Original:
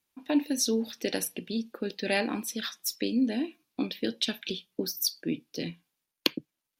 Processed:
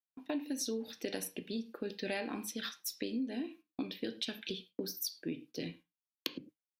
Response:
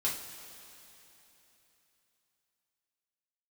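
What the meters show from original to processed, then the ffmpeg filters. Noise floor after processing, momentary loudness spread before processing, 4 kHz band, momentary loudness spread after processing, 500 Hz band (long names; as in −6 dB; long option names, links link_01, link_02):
below −85 dBFS, 8 LU, −9.0 dB, 6 LU, −7.5 dB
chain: -filter_complex "[0:a]agate=range=-26dB:threshold=-49dB:ratio=16:detection=peak,asplit=2[link_01][link_02];[1:a]atrim=start_sample=2205,afade=type=out:start_time=0.16:duration=0.01,atrim=end_sample=7497,lowpass=4000[link_03];[link_02][link_03]afir=irnorm=-1:irlink=0,volume=-11dB[link_04];[link_01][link_04]amix=inputs=2:normalize=0,acompressor=threshold=-27dB:ratio=5,volume=-6.5dB"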